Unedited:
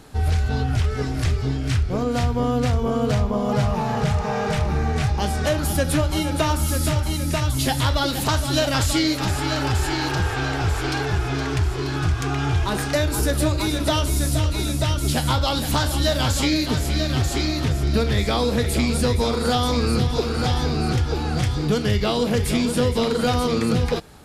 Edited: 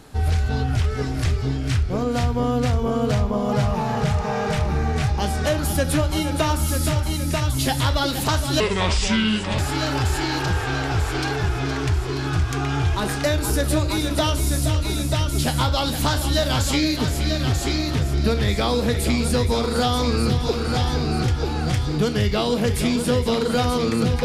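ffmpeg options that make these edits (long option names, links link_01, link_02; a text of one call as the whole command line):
ffmpeg -i in.wav -filter_complex "[0:a]asplit=3[link_01][link_02][link_03];[link_01]atrim=end=8.604[link_04];[link_02]atrim=start=8.6:end=9.28,asetpts=PTS-STARTPTS,asetrate=30429,aresample=44100[link_05];[link_03]atrim=start=9.276[link_06];[link_04][link_05]acrossfade=duration=0.004:curve1=hsin:curve2=hsin[link_07];[link_07][link_06]acrossfade=duration=0.004:curve1=hsin:curve2=hsin" out.wav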